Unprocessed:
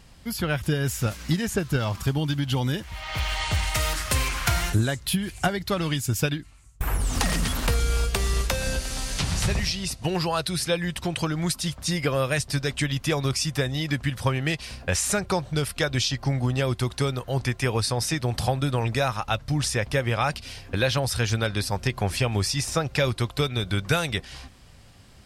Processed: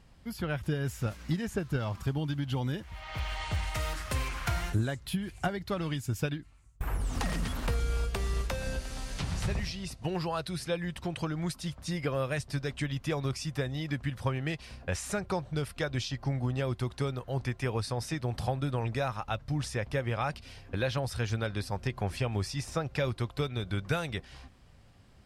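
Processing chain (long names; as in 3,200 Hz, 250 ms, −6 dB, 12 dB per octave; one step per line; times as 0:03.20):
high-shelf EQ 2,900 Hz −8.5 dB
level −6.5 dB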